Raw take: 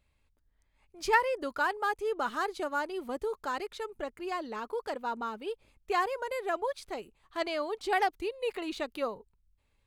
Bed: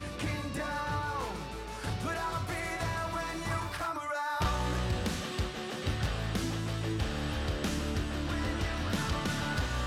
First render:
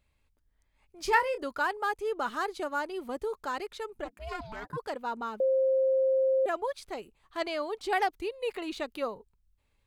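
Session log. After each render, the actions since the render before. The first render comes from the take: 1.02–1.44 doubler 28 ms -9.5 dB; 4.04–4.76 ring modulator 220 Hz -> 610 Hz; 5.4–6.46 bleep 529 Hz -22 dBFS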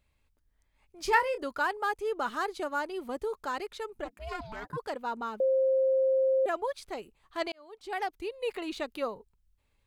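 7.52–8.46 fade in linear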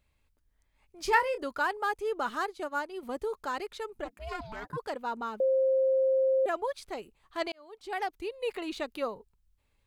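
2.45–3.03 upward expander, over -45 dBFS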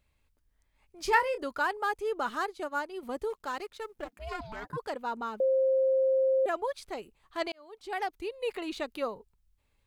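3.3–4.13 G.711 law mismatch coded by A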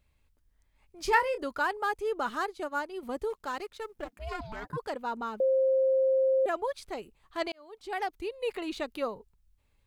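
low shelf 220 Hz +3.5 dB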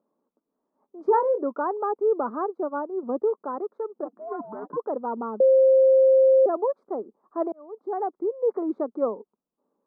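elliptic band-pass 210–1200 Hz, stop band 40 dB; bell 370 Hz +10 dB 2.3 oct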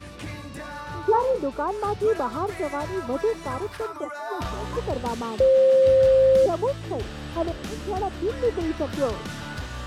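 add bed -1.5 dB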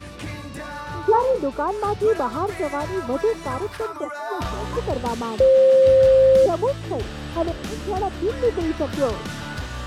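gain +3 dB

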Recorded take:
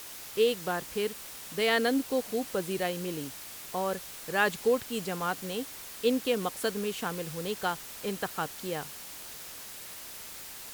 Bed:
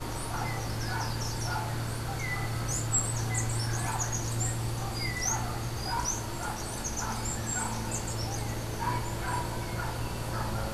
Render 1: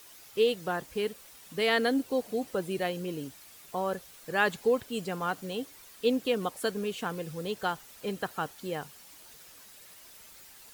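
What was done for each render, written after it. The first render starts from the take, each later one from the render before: denoiser 10 dB, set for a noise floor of -44 dBFS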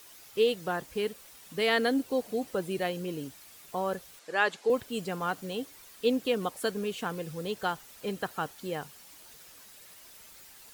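4.19–4.7 BPF 350–7600 Hz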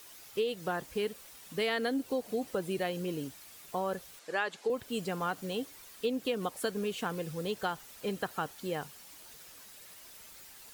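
compressor 6:1, threshold -28 dBFS, peak gain reduction 8 dB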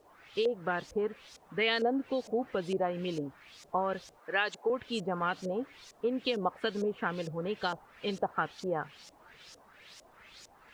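LFO low-pass saw up 2.2 Hz 540–6500 Hz; requantised 12-bit, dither none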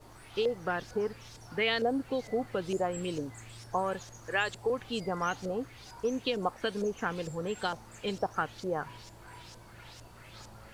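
add bed -19 dB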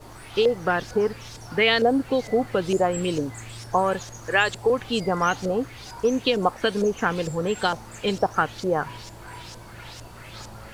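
gain +9.5 dB

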